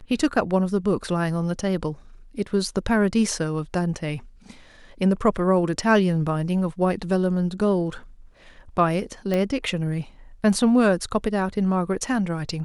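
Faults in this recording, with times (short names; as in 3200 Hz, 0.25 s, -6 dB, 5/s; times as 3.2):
9.34 pop -12 dBFS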